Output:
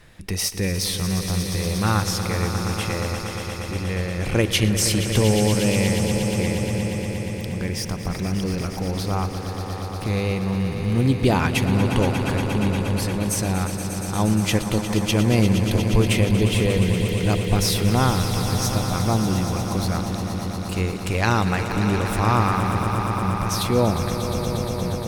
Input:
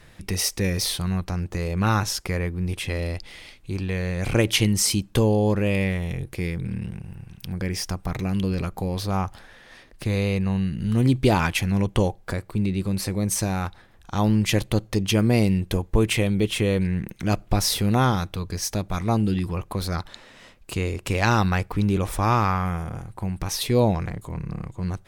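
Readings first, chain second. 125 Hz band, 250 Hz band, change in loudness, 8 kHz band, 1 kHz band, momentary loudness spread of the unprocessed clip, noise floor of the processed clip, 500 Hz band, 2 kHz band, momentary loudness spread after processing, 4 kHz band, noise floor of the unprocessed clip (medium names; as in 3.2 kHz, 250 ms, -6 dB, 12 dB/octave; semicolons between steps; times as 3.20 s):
+2.5 dB, +2.0 dB, +2.0 dB, +2.5 dB, +2.5 dB, 12 LU, -30 dBFS, +2.0 dB, +2.5 dB, 8 LU, +2.5 dB, -51 dBFS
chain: echo with a slow build-up 118 ms, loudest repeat 5, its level -11 dB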